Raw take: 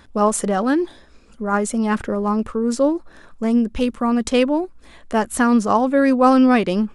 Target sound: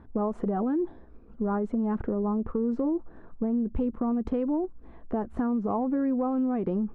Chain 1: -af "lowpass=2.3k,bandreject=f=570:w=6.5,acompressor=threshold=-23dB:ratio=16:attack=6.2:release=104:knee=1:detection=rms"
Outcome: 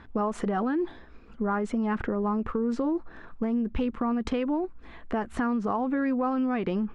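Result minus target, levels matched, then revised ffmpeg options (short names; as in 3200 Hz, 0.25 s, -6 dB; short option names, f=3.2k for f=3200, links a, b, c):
2000 Hz band +12.0 dB
-af "lowpass=730,bandreject=f=570:w=6.5,acompressor=threshold=-23dB:ratio=16:attack=6.2:release=104:knee=1:detection=rms"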